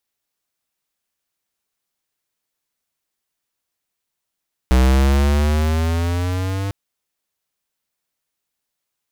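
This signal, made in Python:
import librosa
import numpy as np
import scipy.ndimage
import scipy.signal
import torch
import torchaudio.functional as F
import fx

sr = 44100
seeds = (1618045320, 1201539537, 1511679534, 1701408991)

y = fx.riser_tone(sr, length_s=2.0, level_db=-12.0, wave='square', hz=62.7, rise_st=8.0, swell_db=-11.0)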